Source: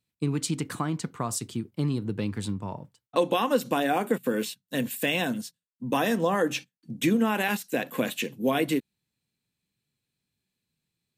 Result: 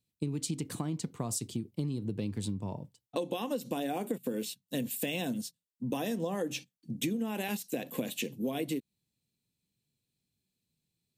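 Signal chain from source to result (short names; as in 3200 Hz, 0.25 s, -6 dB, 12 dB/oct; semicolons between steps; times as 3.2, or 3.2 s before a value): bell 1400 Hz -12.5 dB 1.4 oct; compressor, threshold -30 dBFS, peak gain reduction 10.5 dB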